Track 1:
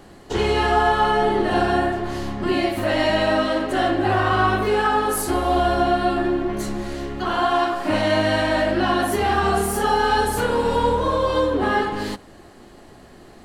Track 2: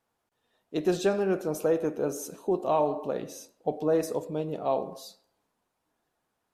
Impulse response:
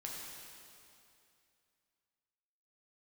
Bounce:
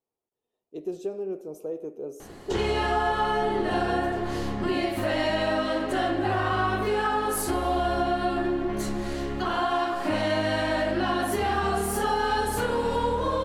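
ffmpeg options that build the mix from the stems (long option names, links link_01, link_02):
-filter_complex "[0:a]adelay=2200,volume=0dB[link_01];[1:a]equalizer=frequency=400:width_type=o:width=0.67:gain=10,equalizer=frequency=1600:width_type=o:width=0.67:gain=-11,equalizer=frequency=4000:width_type=o:width=0.67:gain=-5,volume=-13dB[link_02];[link_01][link_02]amix=inputs=2:normalize=0,acompressor=threshold=-27dB:ratio=2"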